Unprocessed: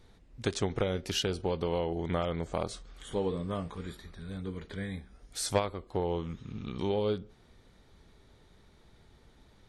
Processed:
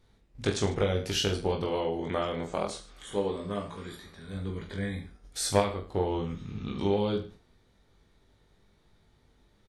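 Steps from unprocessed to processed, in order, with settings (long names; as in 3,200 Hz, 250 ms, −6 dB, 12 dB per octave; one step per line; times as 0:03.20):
noise gate −51 dBFS, range −8 dB
0:01.63–0:04.33: low-shelf EQ 150 Hz −10.5 dB
reverse bouncing-ball delay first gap 20 ms, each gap 1.2×, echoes 5
level +1 dB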